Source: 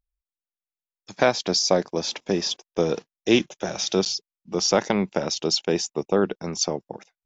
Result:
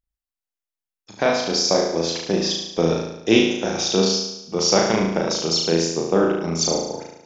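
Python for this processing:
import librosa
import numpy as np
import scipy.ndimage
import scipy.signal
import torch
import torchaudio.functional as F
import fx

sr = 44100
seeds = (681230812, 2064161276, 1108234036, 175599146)

y = fx.rider(x, sr, range_db=10, speed_s=2.0)
y = fx.room_flutter(y, sr, wall_m=6.2, rt60_s=0.85)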